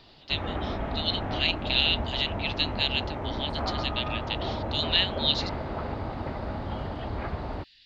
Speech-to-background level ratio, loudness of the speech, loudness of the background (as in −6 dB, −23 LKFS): 5.5 dB, −28.0 LKFS, −33.5 LKFS